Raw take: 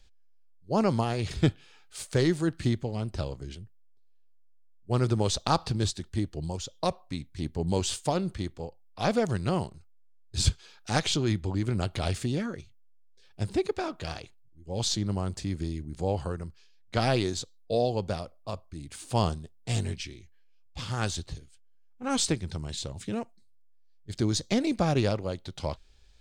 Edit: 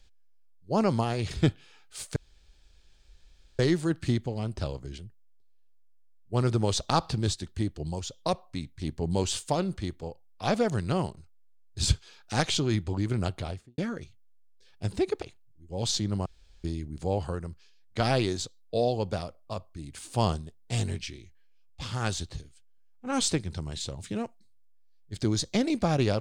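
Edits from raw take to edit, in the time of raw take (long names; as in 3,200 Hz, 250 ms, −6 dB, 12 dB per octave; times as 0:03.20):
0:02.16: splice in room tone 1.43 s
0:11.79–0:12.35: fade out and dull
0:13.79–0:14.19: remove
0:15.23–0:15.61: fill with room tone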